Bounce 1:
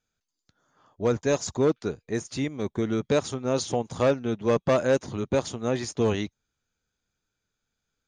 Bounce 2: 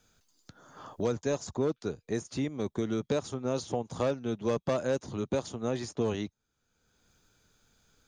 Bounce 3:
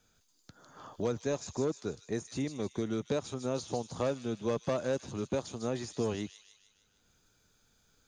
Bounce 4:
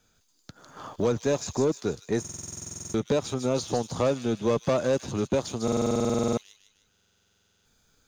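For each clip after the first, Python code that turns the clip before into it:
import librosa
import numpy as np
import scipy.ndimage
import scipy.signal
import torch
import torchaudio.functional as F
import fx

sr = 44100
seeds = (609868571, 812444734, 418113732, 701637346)

y1 = fx.peak_eq(x, sr, hz=2100.0, db=-4.0, octaves=0.95)
y1 = fx.band_squash(y1, sr, depth_pct=70)
y1 = F.gain(torch.from_numpy(y1), -6.0).numpy()
y2 = fx.echo_wet_highpass(y1, sr, ms=153, feedback_pct=54, hz=4000.0, wet_db=-3)
y2 = F.gain(torch.from_numpy(y2), -2.5).numpy()
y3 = fx.leveller(y2, sr, passes=1)
y3 = fx.buffer_glitch(y3, sr, at_s=(2.2, 5.63, 6.91), block=2048, repeats=15)
y3 = F.gain(torch.from_numpy(y3), 5.0).numpy()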